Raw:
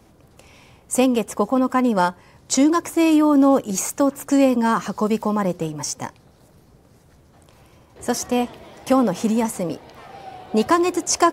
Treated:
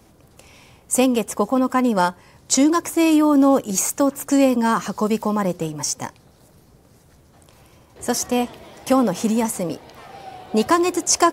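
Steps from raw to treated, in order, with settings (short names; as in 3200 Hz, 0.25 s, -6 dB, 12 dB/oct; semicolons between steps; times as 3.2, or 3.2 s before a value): high shelf 4600 Hz +5 dB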